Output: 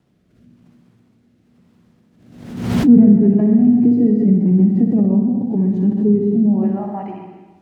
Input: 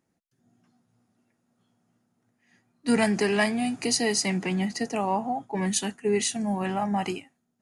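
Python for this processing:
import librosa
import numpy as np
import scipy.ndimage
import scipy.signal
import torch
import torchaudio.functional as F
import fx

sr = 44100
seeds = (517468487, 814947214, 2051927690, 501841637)

y = fx.filter_sweep_bandpass(x, sr, from_hz=230.0, to_hz=2100.0, start_s=6.35, end_s=7.27, q=1.1)
y = fx.quant_dither(y, sr, seeds[0], bits=10, dither='triangular')
y = fx.lowpass(y, sr, hz=3800.0, slope=6)
y = fx.tilt_eq(y, sr, slope=-3.5)
y = fx.room_flutter(y, sr, wall_m=10.6, rt60_s=0.62)
y = fx.rotary(y, sr, hz=1.0)
y = scipy.signal.sosfilt(scipy.signal.butter(2, 120.0, 'highpass', fs=sr, output='sos'), y)
y = fx.low_shelf(y, sr, hz=330.0, db=12.0)
y = fx.rev_plate(y, sr, seeds[1], rt60_s=1.1, hf_ratio=0.9, predelay_ms=105, drr_db=5.5)
y = fx.pre_swell(y, sr, db_per_s=64.0)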